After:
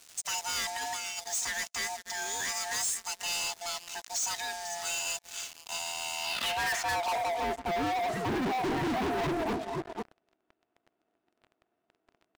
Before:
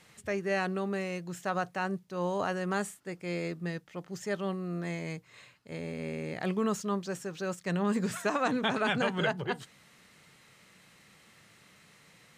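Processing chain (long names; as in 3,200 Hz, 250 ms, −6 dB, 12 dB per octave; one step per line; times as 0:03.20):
neighbouring bands swapped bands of 500 Hz
single-tap delay 493 ms −18.5 dB
dynamic equaliser 840 Hz, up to −5 dB, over −40 dBFS, Q 0.81
leveller curve on the samples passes 2
band-pass filter sweep 6,600 Hz → 330 Hz, 0:06.13–0:07.56
leveller curve on the samples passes 5
0:00.75–0:01.20: compressor whose output falls as the input rises −36 dBFS, ratio −0.5
soft clipping −31.5 dBFS, distortion −14 dB
level +3 dB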